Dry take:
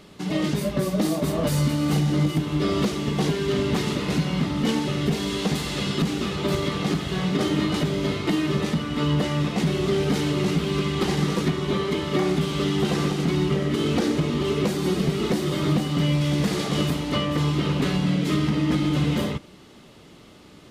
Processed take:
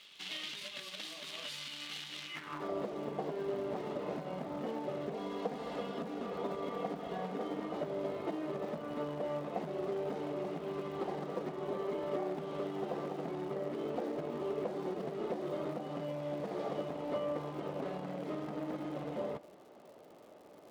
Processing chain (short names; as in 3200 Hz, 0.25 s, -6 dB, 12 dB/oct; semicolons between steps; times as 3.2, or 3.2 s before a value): 5.14–7.73 comb 4.2 ms, depth 67%; compressor 8:1, threshold -25 dBFS, peak gain reduction 9 dB; companded quantiser 4-bit; band-pass sweep 3200 Hz -> 620 Hz, 2.22–2.73; crackle 140/s -53 dBFS; gain +1 dB